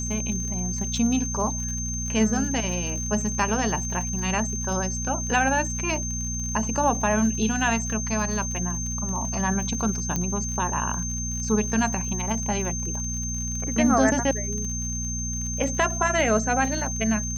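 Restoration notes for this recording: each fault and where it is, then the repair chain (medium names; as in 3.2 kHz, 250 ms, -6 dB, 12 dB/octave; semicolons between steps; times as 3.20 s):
crackle 57 per s -32 dBFS
hum 60 Hz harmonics 4 -31 dBFS
whine 6.3 kHz -30 dBFS
10.16 s: pop -13 dBFS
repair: de-click; de-hum 60 Hz, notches 4; band-stop 6.3 kHz, Q 30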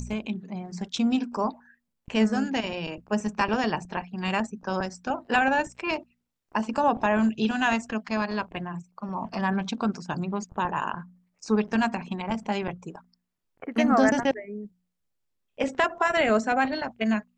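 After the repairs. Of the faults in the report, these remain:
nothing left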